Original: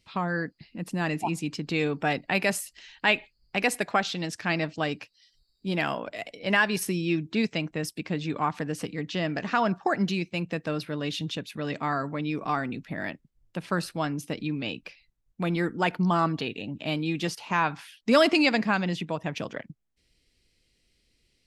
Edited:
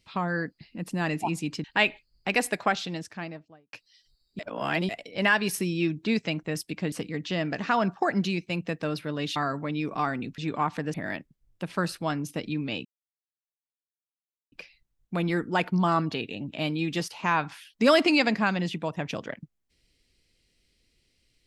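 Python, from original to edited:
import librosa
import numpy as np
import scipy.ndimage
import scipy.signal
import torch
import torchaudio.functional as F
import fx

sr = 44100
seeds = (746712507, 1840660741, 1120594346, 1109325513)

y = fx.studio_fade_out(x, sr, start_s=3.9, length_s=1.11)
y = fx.edit(y, sr, fx.cut(start_s=1.64, length_s=1.28),
    fx.reverse_span(start_s=5.67, length_s=0.5),
    fx.move(start_s=8.2, length_s=0.56, to_s=12.88),
    fx.cut(start_s=11.2, length_s=0.66),
    fx.insert_silence(at_s=14.79, length_s=1.67), tone=tone)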